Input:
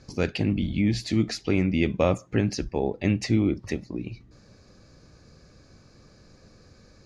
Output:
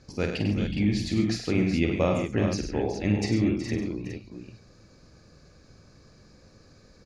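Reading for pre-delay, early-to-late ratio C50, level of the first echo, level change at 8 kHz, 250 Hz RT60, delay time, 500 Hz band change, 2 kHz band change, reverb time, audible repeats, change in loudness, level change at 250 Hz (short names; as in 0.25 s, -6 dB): none, none, -6.5 dB, -0.5 dB, none, 48 ms, -1.0 dB, -1.0 dB, none, 5, -1.0 dB, -0.5 dB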